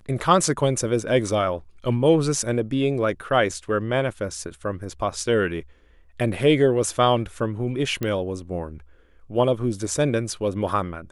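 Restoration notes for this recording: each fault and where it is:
0:08.03: click −13 dBFS

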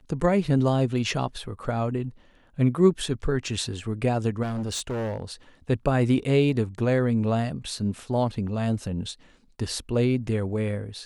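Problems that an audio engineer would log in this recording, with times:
0:04.42–0:05.32: clipping −26 dBFS

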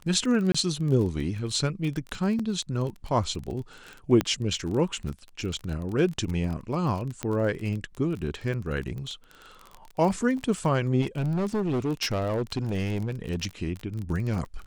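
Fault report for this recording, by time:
surface crackle 26 per second −31 dBFS
0:00.52–0:00.55: drop-out 25 ms
0:02.39–0:02.40: drop-out 5.1 ms
0:04.21: click −11 dBFS
0:07.23: click −14 dBFS
0:11.01–0:13.46: clipping −23 dBFS

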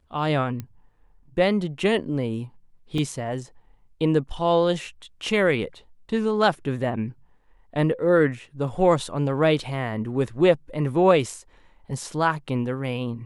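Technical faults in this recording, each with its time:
0:00.60: click −19 dBFS
0:02.98: drop-out 2.9 ms

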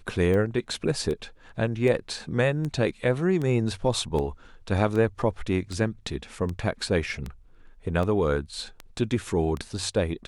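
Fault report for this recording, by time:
scratch tick 78 rpm −20 dBFS

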